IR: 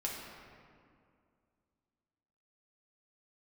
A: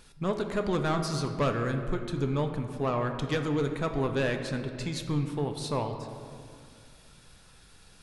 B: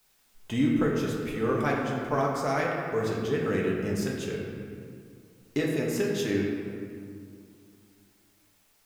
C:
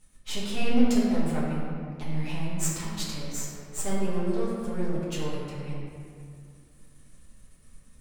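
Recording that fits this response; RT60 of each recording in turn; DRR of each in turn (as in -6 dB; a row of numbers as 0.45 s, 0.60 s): B; 2.3 s, 2.3 s, 2.3 s; 5.0 dB, -3.5 dB, -9.0 dB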